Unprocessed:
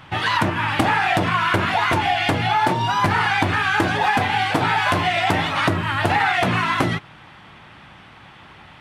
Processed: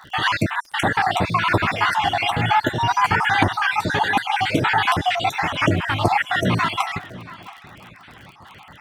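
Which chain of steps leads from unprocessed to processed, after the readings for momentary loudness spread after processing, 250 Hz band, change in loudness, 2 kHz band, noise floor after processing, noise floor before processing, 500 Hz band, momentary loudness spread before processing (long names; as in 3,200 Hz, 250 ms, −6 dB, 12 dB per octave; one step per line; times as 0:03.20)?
5 LU, −1.0 dB, −0.5 dB, −1.0 dB, −46 dBFS, −45 dBFS, −1.0 dB, 2 LU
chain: time-frequency cells dropped at random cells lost 50%
surface crackle 48 per second −36 dBFS
on a send: feedback echo with a low-pass in the loop 681 ms, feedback 27%, low-pass 4,700 Hz, level −18 dB
on the sum: level +2.5 dB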